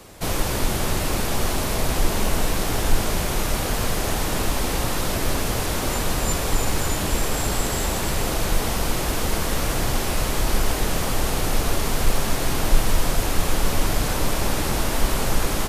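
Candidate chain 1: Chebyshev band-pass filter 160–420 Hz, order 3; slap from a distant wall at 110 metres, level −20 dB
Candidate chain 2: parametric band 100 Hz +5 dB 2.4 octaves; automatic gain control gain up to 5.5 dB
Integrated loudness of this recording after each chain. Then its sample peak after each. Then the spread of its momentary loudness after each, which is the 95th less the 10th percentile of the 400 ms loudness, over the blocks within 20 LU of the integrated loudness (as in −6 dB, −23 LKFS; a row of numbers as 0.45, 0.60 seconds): −33.0, −19.0 LKFS; −19.5, −1.5 dBFS; 1, 2 LU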